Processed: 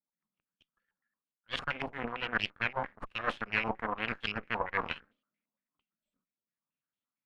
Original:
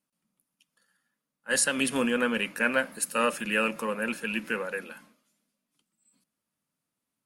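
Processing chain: reverse; compressor 8:1, threshold -39 dBFS, peak gain reduction 19 dB; reverse; one-sided clip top -40 dBFS; rotary speaker horn 7.5 Hz, later 0.8 Hz, at 4.16; added harmonics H 4 -9 dB, 5 -28 dB, 7 -16 dB, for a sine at -29 dBFS; stepped low-pass 8.8 Hz 900–3300 Hz; gain +7.5 dB

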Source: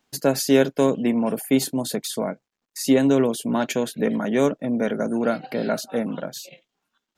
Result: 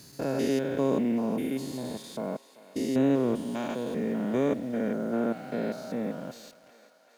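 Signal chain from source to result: stepped spectrum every 0.2 s; bit-crush 8-bit; high shelf 4400 Hz -9 dB; on a send: thinning echo 0.388 s, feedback 78%, high-pass 550 Hz, level -16.5 dB; on the sum: gain -4 dB

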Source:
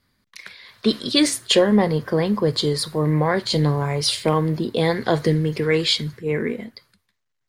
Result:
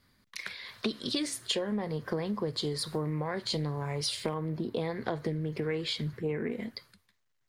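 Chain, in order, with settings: 4.34–6.52 bell 6800 Hz -7.5 dB 2.5 oct; compressor 10:1, threshold -29 dBFS, peak gain reduction 18 dB; Doppler distortion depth 0.13 ms

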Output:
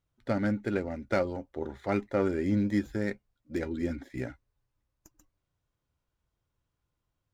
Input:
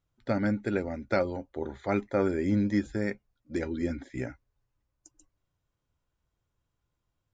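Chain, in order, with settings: running maximum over 3 samples; gain -1 dB

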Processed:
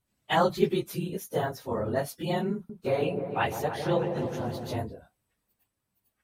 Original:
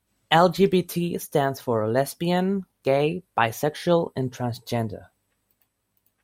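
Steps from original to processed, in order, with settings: phase scrambler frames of 50 ms; 2.54–4.76 repeats that get brighter 0.153 s, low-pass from 750 Hz, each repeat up 1 oct, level -6 dB; gain -6.5 dB

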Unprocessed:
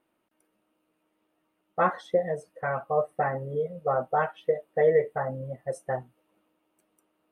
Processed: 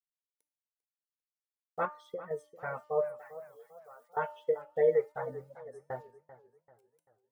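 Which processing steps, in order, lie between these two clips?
bit-crush 10-bit; small resonant body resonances 450/940/1400/2200 Hz, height 8 dB; 1.85–2.31 compressor 2:1, threshold -33 dBFS, peak gain reduction 9 dB; 5.36–5.9 fade out; reverb removal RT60 1.6 s; 3.06–4.17 differentiator; resonator 300 Hz, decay 0.5 s, harmonics all, mix 70%; warbling echo 0.393 s, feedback 40%, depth 112 cents, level -16 dB

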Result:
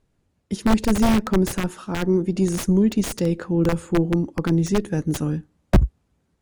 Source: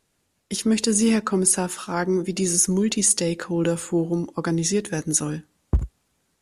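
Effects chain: wrapped overs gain 13 dB; tilt -3 dB/oct; added harmonics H 3 -21 dB, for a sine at -0.5 dBFS

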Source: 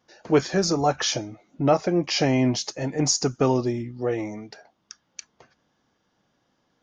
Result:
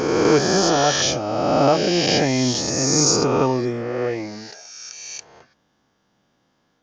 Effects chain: spectral swells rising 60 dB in 2.21 s

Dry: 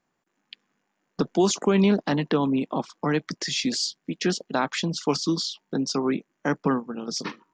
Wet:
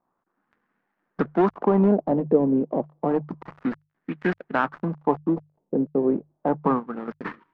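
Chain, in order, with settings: switching dead time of 0.21 ms; notches 50/100/150 Hz; LFO low-pass sine 0.3 Hz 520–1800 Hz

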